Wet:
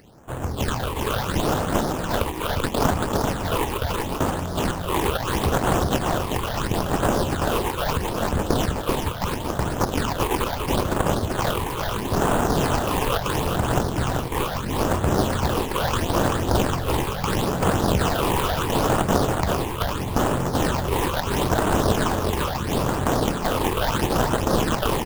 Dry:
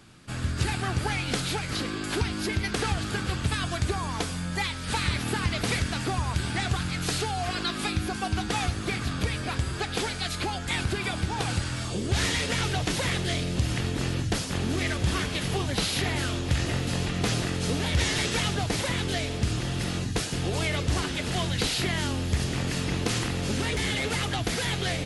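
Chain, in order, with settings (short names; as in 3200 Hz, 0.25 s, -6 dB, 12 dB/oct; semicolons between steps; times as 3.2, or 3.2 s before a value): self-modulated delay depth 0.93 ms; pre-emphasis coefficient 0.8; in parallel at +2.5 dB: negative-ratio compressor -33 dBFS, ratio -0.5; on the sum: sample-rate reducer 2200 Hz, jitter 20%; phaser stages 8, 0.75 Hz, lowest notch 180–5000 Hz; on a send: echo 0.387 s -4 dB; on the sum: gain +5 dB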